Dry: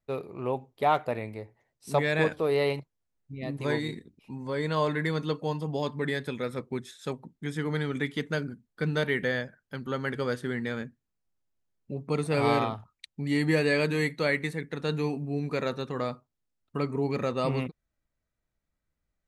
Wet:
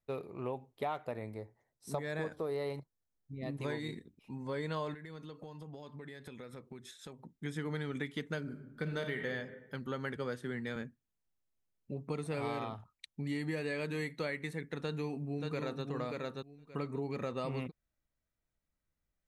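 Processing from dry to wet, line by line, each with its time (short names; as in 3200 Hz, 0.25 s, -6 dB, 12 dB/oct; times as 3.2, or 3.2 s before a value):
1.12–3.46 bell 2700 Hz -10 dB 0.63 oct
4.94–7.37 compressor 12:1, threshold -39 dBFS
8.4–9.28 reverb throw, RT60 0.96 s, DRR 4.5 dB
10.16–10.76 three-band expander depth 70%
14.8–15.84 echo throw 0.58 s, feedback 15%, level -4.5 dB
whole clip: notch 4600 Hz, Q 20; compressor, threshold -29 dBFS; gain -4.5 dB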